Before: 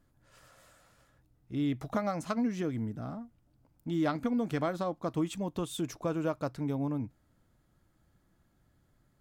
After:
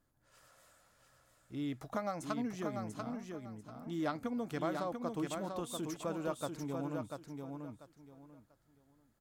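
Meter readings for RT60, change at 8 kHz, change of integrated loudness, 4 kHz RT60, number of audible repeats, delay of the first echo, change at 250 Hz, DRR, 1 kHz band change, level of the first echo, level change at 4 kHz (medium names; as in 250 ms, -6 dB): no reverb, -1.0 dB, -6.5 dB, no reverb, 3, 691 ms, -6.5 dB, no reverb, -3.0 dB, -5.0 dB, -3.5 dB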